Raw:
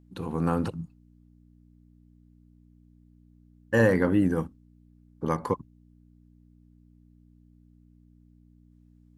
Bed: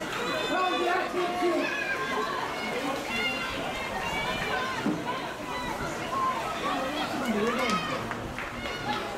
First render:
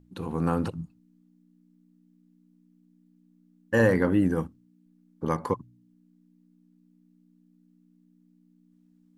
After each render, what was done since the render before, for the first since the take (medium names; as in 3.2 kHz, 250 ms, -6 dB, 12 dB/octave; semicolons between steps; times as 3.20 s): de-hum 60 Hz, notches 2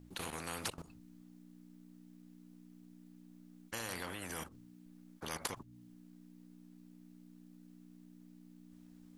level held to a coarse grid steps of 17 dB; spectrum-flattening compressor 4:1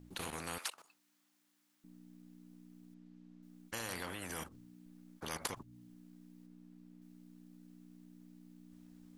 0.58–1.84 s: high-pass 1 kHz; 2.94–3.43 s: distance through air 100 m; 6.46–7.02 s: treble shelf 4 kHz -7 dB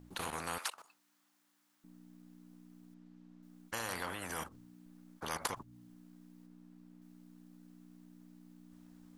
FFT filter 350 Hz 0 dB, 970 Hz +6 dB, 1.4 kHz +5 dB, 2.3 kHz +1 dB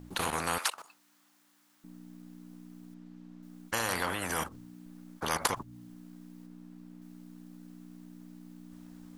trim +8 dB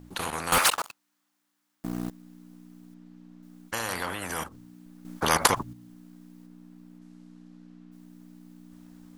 0.52–2.10 s: waveshaping leveller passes 5; 5.05–5.73 s: gain +8.5 dB; 6.98–7.91 s: low-pass 9.5 kHz -> 3.8 kHz